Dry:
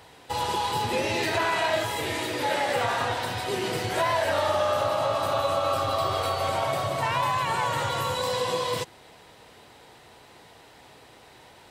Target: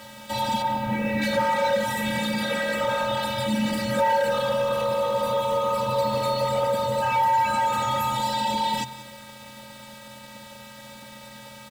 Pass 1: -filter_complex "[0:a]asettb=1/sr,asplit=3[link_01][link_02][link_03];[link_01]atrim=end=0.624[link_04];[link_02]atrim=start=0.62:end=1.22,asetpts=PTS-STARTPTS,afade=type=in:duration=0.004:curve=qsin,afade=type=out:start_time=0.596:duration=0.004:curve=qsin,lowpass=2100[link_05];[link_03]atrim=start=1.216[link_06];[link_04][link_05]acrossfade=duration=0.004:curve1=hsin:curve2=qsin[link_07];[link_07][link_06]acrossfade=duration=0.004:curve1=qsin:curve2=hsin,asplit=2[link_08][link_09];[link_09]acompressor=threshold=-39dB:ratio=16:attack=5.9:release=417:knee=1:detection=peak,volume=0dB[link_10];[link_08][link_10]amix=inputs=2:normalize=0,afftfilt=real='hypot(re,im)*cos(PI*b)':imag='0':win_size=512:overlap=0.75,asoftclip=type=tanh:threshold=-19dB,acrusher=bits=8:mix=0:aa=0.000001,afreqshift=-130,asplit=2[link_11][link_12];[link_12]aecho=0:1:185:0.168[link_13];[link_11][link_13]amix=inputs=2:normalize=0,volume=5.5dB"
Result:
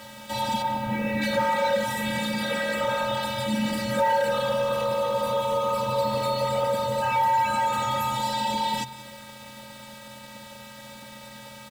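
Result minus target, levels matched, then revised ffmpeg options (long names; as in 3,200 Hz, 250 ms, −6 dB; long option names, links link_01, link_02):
downward compressor: peak gain reduction +9 dB
-filter_complex "[0:a]asettb=1/sr,asplit=3[link_01][link_02][link_03];[link_01]atrim=end=0.624[link_04];[link_02]atrim=start=0.62:end=1.22,asetpts=PTS-STARTPTS,afade=type=in:duration=0.004:curve=qsin,afade=type=out:start_time=0.596:duration=0.004:curve=qsin,lowpass=2100[link_05];[link_03]atrim=start=1.216[link_06];[link_04][link_05]acrossfade=duration=0.004:curve1=hsin:curve2=qsin[link_07];[link_07][link_06]acrossfade=duration=0.004:curve1=qsin:curve2=hsin,asplit=2[link_08][link_09];[link_09]acompressor=threshold=-29.5dB:ratio=16:attack=5.9:release=417:knee=1:detection=peak,volume=0dB[link_10];[link_08][link_10]amix=inputs=2:normalize=0,afftfilt=real='hypot(re,im)*cos(PI*b)':imag='0':win_size=512:overlap=0.75,asoftclip=type=tanh:threshold=-19dB,acrusher=bits=8:mix=0:aa=0.000001,afreqshift=-130,asplit=2[link_11][link_12];[link_12]aecho=0:1:185:0.168[link_13];[link_11][link_13]amix=inputs=2:normalize=0,volume=5.5dB"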